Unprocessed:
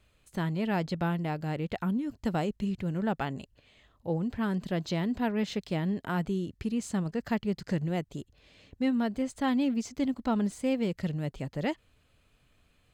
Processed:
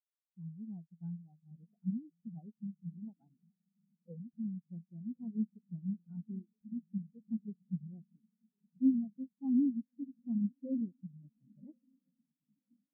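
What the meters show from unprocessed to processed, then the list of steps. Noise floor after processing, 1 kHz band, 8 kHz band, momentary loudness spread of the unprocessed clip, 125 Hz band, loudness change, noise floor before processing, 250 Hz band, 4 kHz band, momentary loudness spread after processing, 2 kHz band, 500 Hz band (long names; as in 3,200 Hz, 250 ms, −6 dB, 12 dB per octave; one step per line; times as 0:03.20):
below −85 dBFS, below −30 dB, below −30 dB, 5 LU, −12.0 dB, −7.5 dB, −68 dBFS, −6.5 dB, below −40 dB, 20 LU, below −40 dB, −25.0 dB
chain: feedback delay with all-pass diffusion 1,120 ms, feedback 67%, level −7.5 dB
every bin expanded away from the loudest bin 4 to 1
level −3 dB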